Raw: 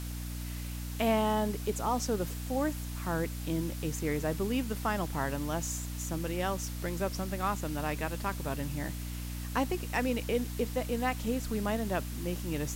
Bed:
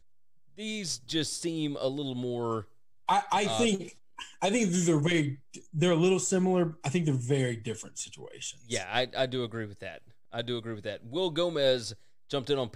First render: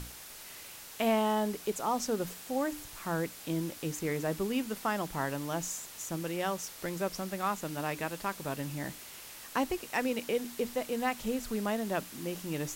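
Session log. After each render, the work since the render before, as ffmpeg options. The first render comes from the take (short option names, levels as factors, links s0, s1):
-af "bandreject=f=60:t=h:w=6,bandreject=f=120:t=h:w=6,bandreject=f=180:t=h:w=6,bandreject=f=240:t=h:w=6,bandreject=f=300:t=h:w=6"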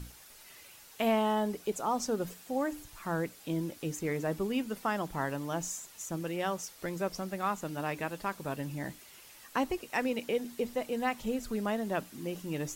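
-af "afftdn=nr=8:nf=-48"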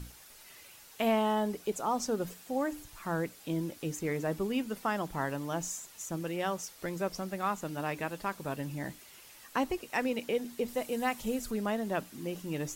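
-filter_complex "[0:a]asettb=1/sr,asplit=3[s0][s1][s2];[s0]atrim=end=10.684[s3];[s1]atrim=start=10.68:end=11.51,asetpts=PTS-STARTPTS,afade=t=in:d=0.004:c=qsin,afade=t=out:st=0.826:d=0.004:c=qsin,equalizer=f=11000:w=0.52:g=6.5[s4];[s2]atrim=start=11.506[s5];[s3][s4]acrossfade=d=0.004:c1=hsin:c2=qsin[s6];[s6][s5]acrossfade=d=0.004:c1=qsin:c2=hsin"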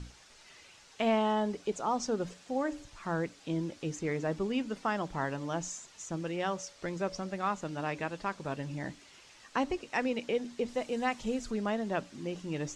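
-af "lowpass=f=7100:w=0.5412,lowpass=f=7100:w=1.3066,bandreject=f=284.3:t=h:w=4,bandreject=f=568.6:t=h:w=4"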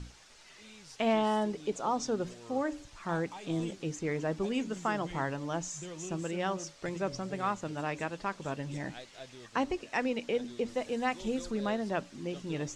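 -filter_complex "[1:a]volume=0.112[s0];[0:a][s0]amix=inputs=2:normalize=0"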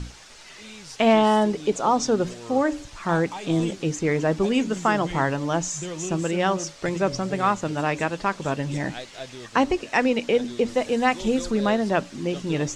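-af "volume=3.35"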